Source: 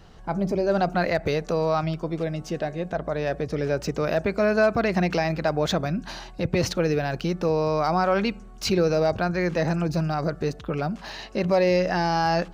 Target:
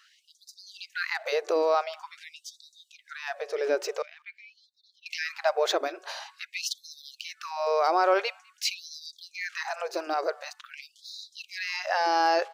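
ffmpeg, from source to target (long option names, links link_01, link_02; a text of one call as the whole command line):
ffmpeg -i in.wav -filter_complex "[0:a]asettb=1/sr,asplit=3[link_01][link_02][link_03];[link_01]atrim=end=4.024[link_04];[link_02]atrim=start=4.02:end=5.06,asetpts=PTS-STARTPTS,afade=type=in:duration=0.004:curve=qsin,afade=type=out:start_time=1.036:duration=0.004:curve=qsin,asplit=3[link_05][link_06][link_07];[link_05]bandpass=frequency=270:width_type=q:width=8,volume=0dB[link_08];[link_06]bandpass=frequency=2290:width_type=q:width=8,volume=-6dB[link_09];[link_07]bandpass=frequency=3010:width_type=q:width=8,volume=-9dB[link_10];[link_08][link_09][link_10]amix=inputs=3:normalize=0[link_11];[link_03]atrim=start=5.056[link_12];[link_04][link_11]acrossfade=duration=0.004:curve1=hsin:curve2=qsin[link_13];[link_13][link_12]acrossfade=duration=0.004:curve1=qsin:curve2=hsin,asplit=2[link_14][link_15];[link_15]adelay=200,highpass=300,lowpass=3400,asoftclip=type=hard:threshold=-19.5dB,volume=-25dB[link_16];[link_14][link_16]amix=inputs=2:normalize=0,afftfilt=real='re*gte(b*sr/1024,300*pow(3600/300,0.5+0.5*sin(2*PI*0.47*pts/sr)))':imag='im*gte(b*sr/1024,300*pow(3600/300,0.5+0.5*sin(2*PI*0.47*pts/sr)))':win_size=1024:overlap=0.75" out.wav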